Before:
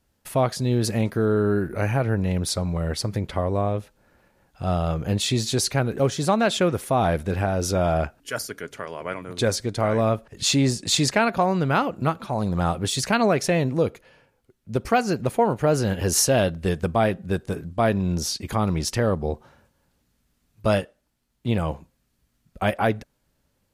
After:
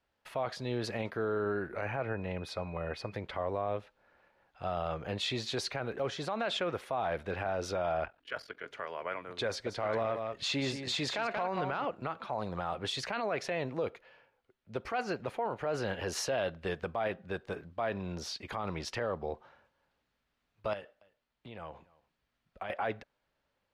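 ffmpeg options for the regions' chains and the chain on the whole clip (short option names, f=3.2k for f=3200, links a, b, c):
-filter_complex "[0:a]asettb=1/sr,asplit=3[a][b][c];[a]atrim=end=1.854[d];[b]atrim=start=1.85:end=3.12,asetpts=PTS-STARTPTS,afade=t=in:d=0.004:c=qsin,afade=t=out:st=1.266:d=0.004:c=qsin,equalizer=f=6.6k:t=o:w=2.4:g=-7,aeval=exprs='val(0)+0.00316*sin(2*PI*2500*n/s)':c=same[e];[c]atrim=start=3.116[f];[d][e]acrossfade=d=0.004:c1=hsin:c2=qsin[g];[g][f]acrossfade=d=0.004:c1=qsin:c2=hsin,asettb=1/sr,asplit=3[h][i][j];[h]atrim=end=8.044[k];[i]atrim=start=8.04:end=8.66,asetpts=PTS-STARTPTS,afade=t=in:d=0.004:c=qsin,afade=t=out:st=0.616:d=0.004:c=qsin,highshelf=f=5k:t=q:w=1.5:g=-7,aeval=exprs='val(0)*sin(2*PI*22*n/s)':c=same[l];[j]atrim=start=8.656[m];[k][l]acrossfade=d=0.004:c1=hsin:c2=qsin[n];[n][m]acrossfade=d=0.004:c1=qsin:c2=hsin,asettb=1/sr,asplit=3[o][p][q];[o]atrim=end=9.484[r];[p]atrim=start=9.48:end=11.85,asetpts=PTS-STARTPTS,afade=t=in:d=0.004:c=qsin,afade=t=out:st=2.366:d=0.004:c=qsin,volume=13dB,asoftclip=hard,volume=-13dB,aecho=1:1:182:0.335,atrim=end_sample=104517[s];[q]atrim=start=11.846[t];[r][s]acrossfade=d=0.004:c1=hsin:c2=qsin[u];[u][t]acrossfade=d=0.004:c1=qsin:c2=hsin,asettb=1/sr,asplit=3[v][w][x];[v]atrim=end=20.734[y];[w]atrim=start=20.73:end=22.7,asetpts=PTS-STARTPTS,afade=t=in:d=0.004:c=qsin,afade=t=out:st=1.966:d=0.004:c=qsin,acompressor=threshold=-30dB:ratio=12:attack=3.2:release=140:knee=1:detection=peak,aecho=1:1:283:0.0668,atrim=end_sample=86877[z];[x]atrim=start=22.696[aa];[y][z]acrossfade=d=0.004:c1=hsin:c2=qsin[ab];[ab][aa]acrossfade=d=0.004:c1=qsin:c2=hsin,acrossover=split=450 4200:gain=0.224 1 0.0891[ac][ad][ae];[ac][ad][ae]amix=inputs=3:normalize=0,alimiter=limit=-21dB:level=0:latency=1:release=18,volume=-3.5dB"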